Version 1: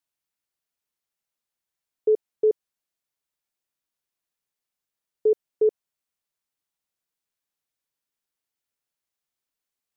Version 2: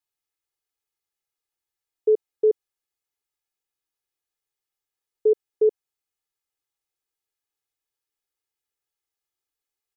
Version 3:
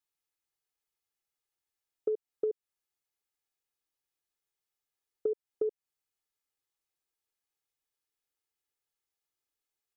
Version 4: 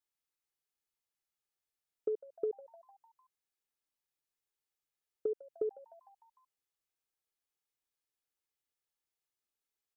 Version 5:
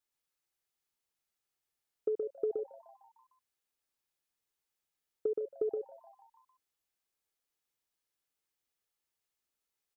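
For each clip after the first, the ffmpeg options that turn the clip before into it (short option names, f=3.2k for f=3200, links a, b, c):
-af "aecho=1:1:2.4:0.98,volume=-4.5dB"
-af "acompressor=threshold=-26dB:ratio=12,volume=-2.5dB"
-filter_complex "[0:a]asplit=6[a][b][c][d][e][f];[b]adelay=151,afreqshift=120,volume=-20dB[g];[c]adelay=302,afreqshift=240,volume=-24.4dB[h];[d]adelay=453,afreqshift=360,volume=-28.9dB[i];[e]adelay=604,afreqshift=480,volume=-33.3dB[j];[f]adelay=755,afreqshift=600,volume=-37.7dB[k];[a][g][h][i][j][k]amix=inputs=6:normalize=0,volume=-3.5dB"
-af "aecho=1:1:122:0.631,volume=1.5dB"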